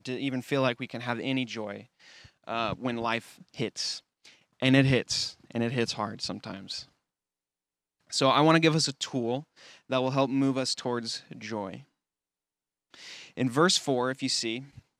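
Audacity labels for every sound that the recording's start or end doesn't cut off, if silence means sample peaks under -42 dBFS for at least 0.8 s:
8.110000	11.810000	sound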